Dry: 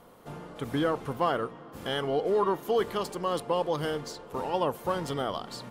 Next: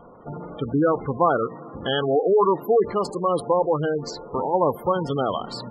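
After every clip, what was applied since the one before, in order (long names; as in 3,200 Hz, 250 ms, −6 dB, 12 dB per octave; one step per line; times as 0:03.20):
gate on every frequency bin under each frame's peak −15 dB strong
level +8 dB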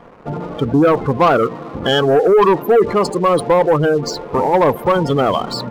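leveller curve on the samples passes 2
level +2.5 dB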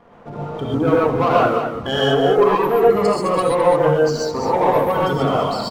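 single-tap delay 210 ms −8 dB
reverb whose tail is shaped and stops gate 160 ms rising, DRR −5 dB
level −9 dB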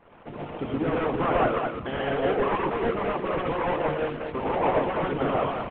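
variable-slope delta modulation 16 kbit/s
harmonic and percussive parts rebalanced harmonic −15 dB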